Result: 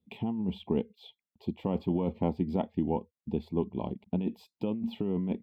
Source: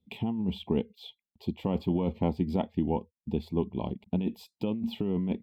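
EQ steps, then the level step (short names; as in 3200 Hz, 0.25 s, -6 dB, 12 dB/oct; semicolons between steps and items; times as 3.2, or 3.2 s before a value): low shelf 92 Hz -8 dB; high shelf 3000 Hz -10 dB; 0.0 dB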